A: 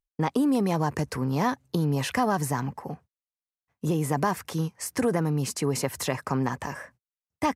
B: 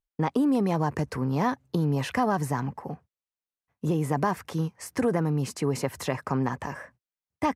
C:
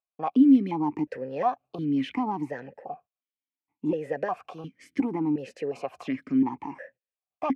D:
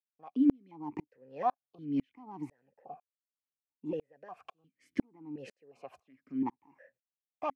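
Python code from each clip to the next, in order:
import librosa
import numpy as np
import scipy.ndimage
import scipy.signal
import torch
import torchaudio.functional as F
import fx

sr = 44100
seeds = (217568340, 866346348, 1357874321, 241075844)

y1 = fx.high_shelf(x, sr, hz=3700.0, db=-8.0)
y2 = fx.vowel_held(y1, sr, hz=2.8)
y2 = y2 * librosa.db_to_amplitude(9.0)
y3 = fx.tremolo_decay(y2, sr, direction='swelling', hz=2.0, depth_db=39)
y3 = y3 * librosa.db_to_amplitude(-2.5)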